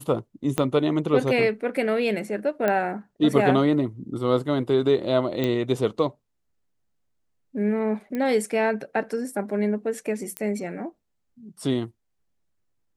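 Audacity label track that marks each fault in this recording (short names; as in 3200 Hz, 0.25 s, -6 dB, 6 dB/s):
0.580000	0.580000	pop -9 dBFS
2.680000	2.680000	pop -11 dBFS
5.440000	5.440000	pop -13 dBFS
8.150000	8.150000	pop -18 dBFS
10.370000	10.370000	pop -12 dBFS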